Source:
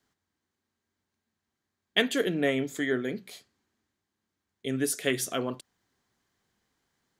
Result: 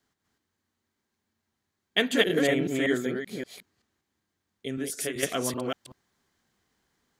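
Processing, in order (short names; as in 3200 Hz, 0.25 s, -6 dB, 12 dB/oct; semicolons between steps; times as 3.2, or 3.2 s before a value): reverse delay 0.191 s, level -0.5 dB; 3.11–5.23 compressor 5:1, threshold -29 dBFS, peak gain reduction 9.5 dB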